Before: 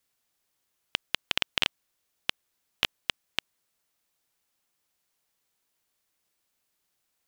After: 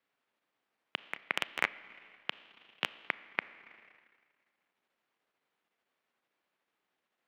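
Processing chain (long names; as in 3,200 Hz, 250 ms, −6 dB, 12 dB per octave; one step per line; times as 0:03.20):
pitch shifter gated in a rhythm −5.5 semitones, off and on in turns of 225 ms
three-way crossover with the lows and the highs turned down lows −20 dB, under 170 Hz, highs −23 dB, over 3,000 Hz
four-comb reverb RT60 1.6 s, combs from 27 ms, DRR 11.5 dB
transient designer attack −6 dB, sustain −10 dB
level +3.5 dB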